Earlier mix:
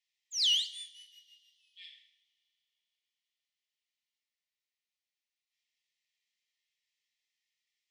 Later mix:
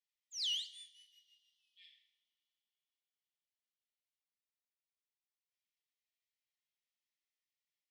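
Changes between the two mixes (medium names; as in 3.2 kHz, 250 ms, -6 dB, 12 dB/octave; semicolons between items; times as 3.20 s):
speech -11.0 dB; background -9.5 dB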